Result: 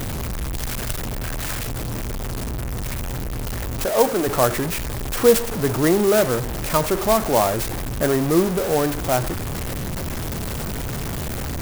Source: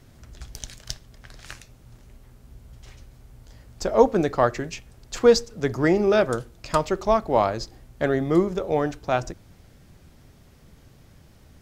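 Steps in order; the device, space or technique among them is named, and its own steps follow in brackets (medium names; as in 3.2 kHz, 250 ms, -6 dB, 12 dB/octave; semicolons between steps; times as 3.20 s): 3.85–4.27 s: high-pass 440 Hz 6 dB/octave; early CD player with a faulty converter (jump at every zero crossing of -21 dBFS; sampling jitter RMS 0.068 ms)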